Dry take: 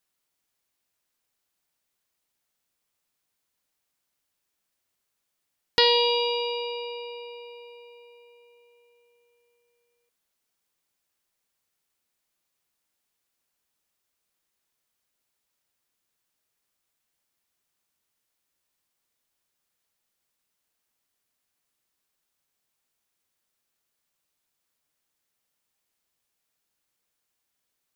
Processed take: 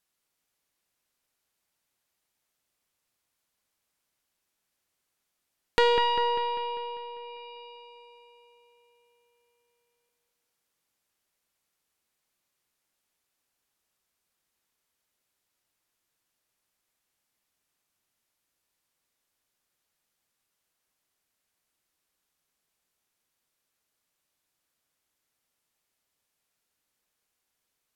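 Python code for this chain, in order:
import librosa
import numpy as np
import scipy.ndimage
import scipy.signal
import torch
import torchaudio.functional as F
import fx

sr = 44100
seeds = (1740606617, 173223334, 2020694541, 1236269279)

y = fx.tracing_dist(x, sr, depth_ms=0.062)
y = fx.env_lowpass_down(y, sr, base_hz=2000.0, full_db=-35.5)
y = fx.echo_wet_lowpass(y, sr, ms=198, feedback_pct=56, hz=2600.0, wet_db=-6)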